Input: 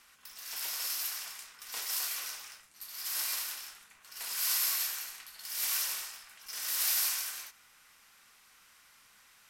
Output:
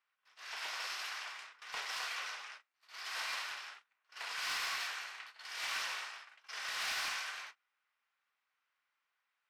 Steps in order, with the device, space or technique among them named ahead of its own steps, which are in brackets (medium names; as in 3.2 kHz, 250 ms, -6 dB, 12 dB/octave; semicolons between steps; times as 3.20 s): walkie-talkie (band-pass 540–2800 Hz; hard clipper -37 dBFS, distortion -20 dB; gate -56 dBFS, range -25 dB); trim +5 dB